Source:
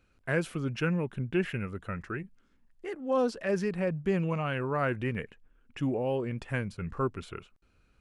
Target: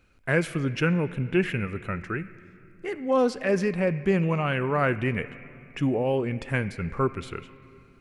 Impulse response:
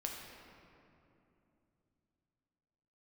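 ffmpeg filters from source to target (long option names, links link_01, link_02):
-filter_complex "[0:a]asplit=2[link_01][link_02];[link_02]equalizer=frequency=2200:width=2.2:gain=13.5[link_03];[1:a]atrim=start_sample=2205[link_04];[link_03][link_04]afir=irnorm=-1:irlink=0,volume=-14dB[link_05];[link_01][link_05]amix=inputs=2:normalize=0,volume=4dB"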